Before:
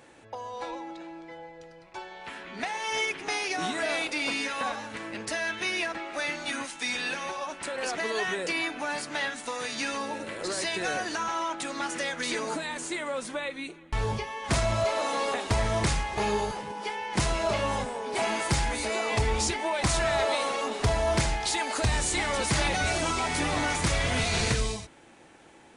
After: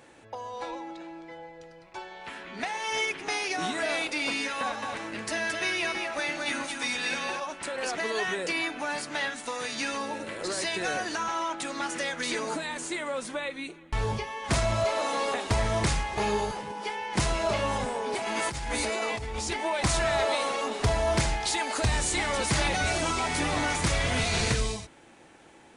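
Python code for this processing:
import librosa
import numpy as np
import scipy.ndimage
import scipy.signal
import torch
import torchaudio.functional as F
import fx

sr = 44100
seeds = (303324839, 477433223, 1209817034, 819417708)

y = fx.echo_single(x, sr, ms=221, db=-4.5, at=(4.6, 7.4))
y = fx.over_compress(y, sr, threshold_db=-31.0, ratio=-1.0, at=(17.76, 19.53))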